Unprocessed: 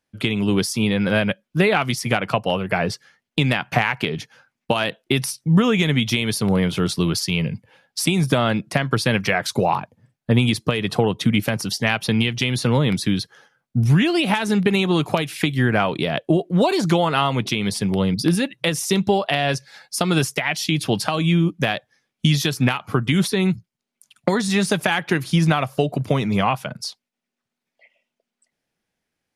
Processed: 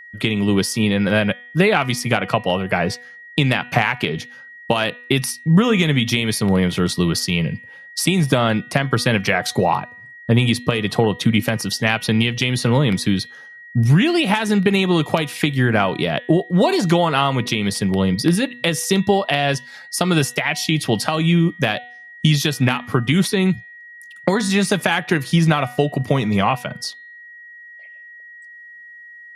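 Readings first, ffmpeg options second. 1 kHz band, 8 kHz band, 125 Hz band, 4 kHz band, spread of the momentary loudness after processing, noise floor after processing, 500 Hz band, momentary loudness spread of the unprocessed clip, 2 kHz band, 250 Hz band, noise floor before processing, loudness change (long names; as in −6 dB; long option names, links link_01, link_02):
+2.0 dB, +2.0 dB, +2.0 dB, +2.0 dB, 8 LU, −41 dBFS, +2.0 dB, 6 LU, +2.5 dB, +2.0 dB, −83 dBFS, +2.0 dB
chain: -af "bandreject=frequency=245:width_type=h:width=4,bandreject=frequency=490:width_type=h:width=4,bandreject=frequency=735:width_type=h:width=4,bandreject=frequency=980:width_type=h:width=4,bandreject=frequency=1225:width_type=h:width=4,bandreject=frequency=1470:width_type=h:width=4,bandreject=frequency=1715:width_type=h:width=4,bandreject=frequency=1960:width_type=h:width=4,bandreject=frequency=2205:width_type=h:width=4,bandreject=frequency=2450:width_type=h:width=4,bandreject=frequency=2695:width_type=h:width=4,bandreject=frequency=2940:width_type=h:width=4,bandreject=frequency=3185:width_type=h:width=4,bandreject=frequency=3430:width_type=h:width=4,bandreject=frequency=3675:width_type=h:width=4,bandreject=frequency=3920:width_type=h:width=4,bandreject=frequency=4165:width_type=h:width=4,aeval=exprs='val(0)+0.01*sin(2*PI*1900*n/s)':channel_layout=same,volume=2dB"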